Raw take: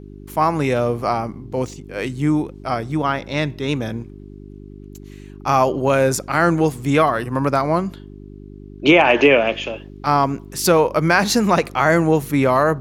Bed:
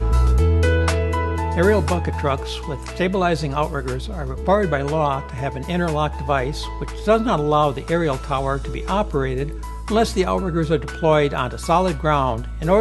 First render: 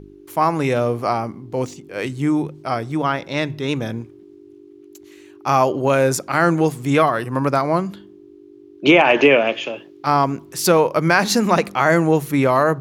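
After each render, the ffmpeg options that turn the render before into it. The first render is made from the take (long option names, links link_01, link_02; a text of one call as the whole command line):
ffmpeg -i in.wav -af "bandreject=frequency=50:width_type=h:width=4,bandreject=frequency=100:width_type=h:width=4,bandreject=frequency=150:width_type=h:width=4,bandreject=frequency=200:width_type=h:width=4,bandreject=frequency=250:width_type=h:width=4" out.wav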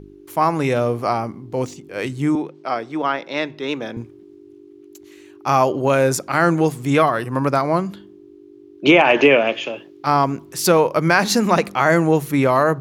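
ffmpeg -i in.wav -filter_complex "[0:a]asettb=1/sr,asplit=3[link_01][link_02][link_03];[link_01]atrim=end=2.354[link_04];[link_02]atrim=start=2.35:end=3.97,asetpts=PTS-STARTPTS,afade=type=in:duration=0.004:curve=qsin,afade=type=out:start_time=1.616:duration=0.004:curve=qsin,acrossover=split=230 5800:gain=0.1 1 0.178[link_05][link_06][link_07];[link_05][link_06][link_07]amix=inputs=3:normalize=0[link_08];[link_03]atrim=start=3.966[link_09];[link_04][link_08]acrossfade=duration=0.004:curve1=hsin:curve2=qsin[link_10];[link_10][link_09]acrossfade=duration=0.004:curve1=qsin:curve2=hsin" out.wav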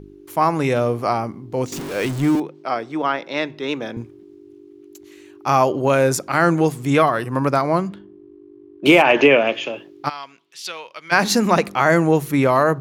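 ffmpeg -i in.wav -filter_complex "[0:a]asettb=1/sr,asplit=3[link_01][link_02][link_03];[link_01]atrim=end=1.724[link_04];[link_02]atrim=start=1.72:end=2.4,asetpts=PTS-STARTPTS,afade=type=in:duration=0.004:curve=qsin,afade=type=out:start_time=0.676:duration=0.004:curve=qsin,aeval=exprs='val(0)+0.5*0.0562*sgn(val(0))':channel_layout=same[link_05];[link_03]atrim=start=2.396[link_06];[link_04][link_05]acrossfade=duration=0.004:curve1=hsin:curve2=qsin[link_07];[link_07][link_06]acrossfade=duration=0.004:curve1=qsin:curve2=hsin,asplit=3[link_08][link_09][link_10];[link_08]afade=type=out:start_time=7.88:duration=0.02[link_11];[link_09]adynamicsmooth=sensitivity=8:basefreq=1800,afade=type=in:start_time=7.88:duration=0.02,afade=type=out:start_time=9.01:duration=0.02[link_12];[link_10]afade=type=in:start_time=9.01:duration=0.02[link_13];[link_11][link_12][link_13]amix=inputs=3:normalize=0,asplit=3[link_14][link_15][link_16];[link_14]afade=type=out:start_time=10.08:duration=0.02[link_17];[link_15]bandpass=frequency=3200:width_type=q:width=2.3,afade=type=in:start_time=10.08:duration=0.02,afade=type=out:start_time=11.11:duration=0.02[link_18];[link_16]afade=type=in:start_time=11.11:duration=0.02[link_19];[link_17][link_18][link_19]amix=inputs=3:normalize=0" out.wav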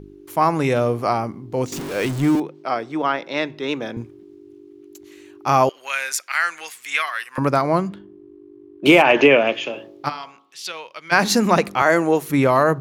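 ffmpeg -i in.wav -filter_complex "[0:a]asettb=1/sr,asplit=3[link_01][link_02][link_03];[link_01]atrim=end=5.694[link_04];[link_02]atrim=start=5.69:end=7.38,asetpts=PTS-STARTPTS,afade=type=in:duration=0.004:curve=qsin,afade=type=out:start_time=1.686:duration=0.004:curve=qsin,highpass=frequency=2000:width_type=q:width=1.7[link_05];[link_03]atrim=start=7.376[link_06];[link_04][link_05]acrossfade=duration=0.004:curve1=hsin:curve2=qsin[link_07];[link_07][link_06]acrossfade=duration=0.004:curve1=qsin:curve2=hsin,asettb=1/sr,asplit=3[link_08][link_09][link_10];[link_08]atrim=end=9.664[link_11];[link_09]atrim=start=9.66:end=10.74,asetpts=PTS-STARTPTS,afade=type=in:duration=0.004:curve=qsin,afade=type=out:start_time=1.076:duration=0.004:curve=qsin,bandreject=frequency=55.38:width_type=h:width=4,bandreject=frequency=110.76:width_type=h:width=4,bandreject=frequency=166.14:width_type=h:width=4,bandreject=frequency=221.52:width_type=h:width=4,bandreject=frequency=276.9:width_type=h:width=4,bandreject=frequency=332.28:width_type=h:width=4,bandreject=frequency=387.66:width_type=h:width=4,bandreject=frequency=443.04:width_type=h:width=4,bandreject=frequency=498.42:width_type=h:width=4,bandreject=frequency=553.8:width_type=h:width=4,bandreject=frequency=609.18:width_type=h:width=4,bandreject=frequency=664.56:width_type=h:width=4,bandreject=frequency=719.94:width_type=h:width=4,bandreject=frequency=775.32:width_type=h:width=4,bandreject=frequency=830.7:width_type=h:width=4,bandreject=frequency=886.08:width_type=h:width=4,bandreject=frequency=941.46:width_type=h:width=4,bandreject=frequency=996.84:width_type=h:width=4,bandreject=frequency=1052.22:width_type=h:width=4,bandreject=frequency=1107.6:width_type=h:width=4,bandreject=frequency=1162.98:width_type=h:width=4,bandreject=frequency=1218.36:width_type=h:width=4,bandreject=frequency=1273.74:width_type=h:width=4,bandreject=frequency=1329.12:width_type=h:width=4[link_12];[link_10]atrim=start=10.736[link_13];[link_11][link_12]acrossfade=duration=0.004:curve1=hsin:curve2=qsin[link_14];[link_14][link_13]acrossfade=duration=0.004:curve1=qsin:curve2=hsin,asettb=1/sr,asplit=3[link_15][link_16][link_17];[link_15]atrim=end=11.824[link_18];[link_16]atrim=start=11.82:end=12.3,asetpts=PTS-STARTPTS,afade=type=in:duration=0.004:curve=qsin,afade=type=out:start_time=0.476:duration=0.004:curve=qsin,highpass=280[link_19];[link_17]atrim=start=12.296[link_20];[link_18][link_19]acrossfade=duration=0.004:curve1=hsin:curve2=qsin[link_21];[link_21][link_20]acrossfade=duration=0.004:curve1=qsin:curve2=hsin" out.wav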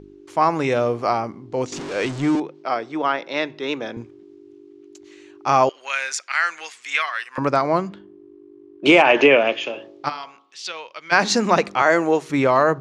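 ffmpeg -i in.wav -af "lowpass=frequency=7400:width=0.5412,lowpass=frequency=7400:width=1.3066,bass=frequency=250:gain=-6,treble=frequency=4000:gain=0" out.wav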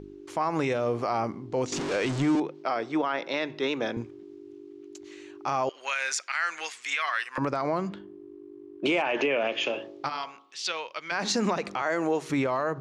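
ffmpeg -i in.wav -af "acompressor=threshold=-19dB:ratio=6,alimiter=limit=-17dB:level=0:latency=1:release=73" out.wav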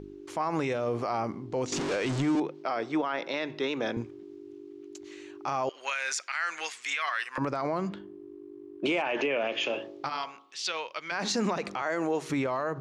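ffmpeg -i in.wav -af "alimiter=limit=-20dB:level=0:latency=1" out.wav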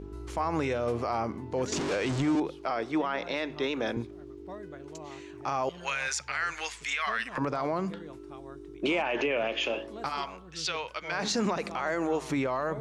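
ffmpeg -i in.wav -i bed.wav -filter_complex "[1:a]volume=-27dB[link_01];[0:a][link_01]amix=inputs=2:normalize=0" out.wav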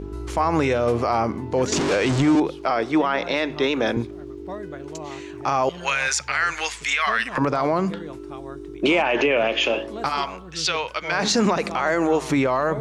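ffmpeg -i in.wav -af "volume=9dB" out.wav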